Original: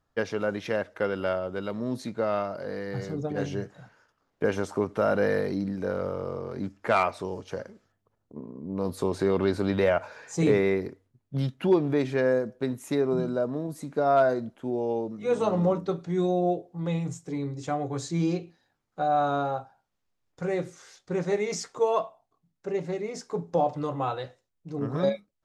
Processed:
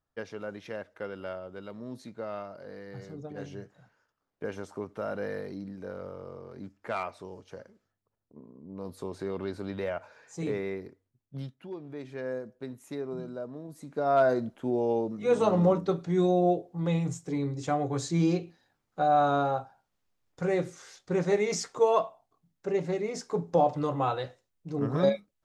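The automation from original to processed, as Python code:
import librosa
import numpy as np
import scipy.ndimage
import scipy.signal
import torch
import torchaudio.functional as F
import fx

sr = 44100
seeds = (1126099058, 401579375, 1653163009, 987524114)

y = fx.gain(x, sr, db=fx.line((11.42, -10.0), (11.68, -19.5), (12.33, -10.5), (13.63, -10.5), (14.37, 1.0)))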